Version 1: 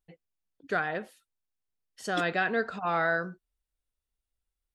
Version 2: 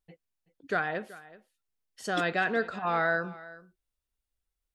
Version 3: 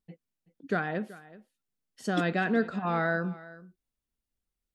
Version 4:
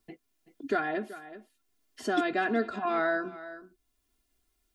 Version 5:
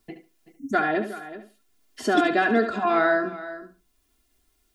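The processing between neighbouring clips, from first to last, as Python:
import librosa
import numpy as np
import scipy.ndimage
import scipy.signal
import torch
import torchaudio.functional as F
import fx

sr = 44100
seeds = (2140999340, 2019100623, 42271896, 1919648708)

y1 = x + 10.0 ** (-19.0 / 20.0) * np.pad(x, (int(378 * sr / 1000.0), 0))[:len(x)]
y2 = fx.peak_eq(y1, sr, hz=210.0, db=12.0, octaves=1.5)
y2 = F.gain(torch.from_numpy(y2), -3.0).numpy()
y3 = y2 + 0.99 * np.pad(y2, (int(2.9 * sr / 1000.0), 0))[:len(y2)]
y3 = fx.band_squash(y3, sr, depth_pct=40)
y3 = F.gain(torch.from_numpy(y3), -2.0).numpy()
y4 = fx.spec_erase(y3, sr, start_s=0.53, length_s=0.21, low_hz=290.0, high_hz=5300.0)
y4 = fx.echo_feedback(y4, sr, ms=71, feedback_pct=18, wet_db=-10)
y4 = F.gain(torch.from_numpy(y4), 7.0).numpy()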